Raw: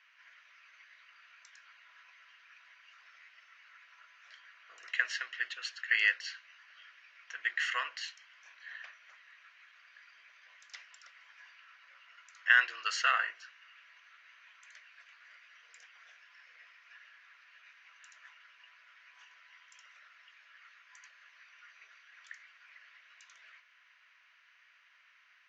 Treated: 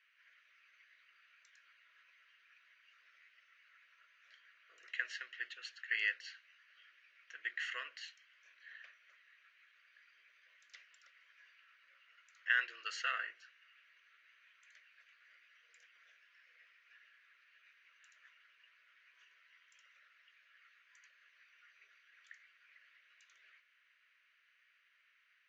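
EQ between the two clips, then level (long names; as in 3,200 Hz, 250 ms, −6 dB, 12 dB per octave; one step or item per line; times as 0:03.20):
high-shelf EQ 3,400 Hz −8 dB
parametric band 5,300 Hz −3.5 dB 0.23 octaves
phaser with its sweep stopped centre 360 Hz, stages 4
−3.0 dB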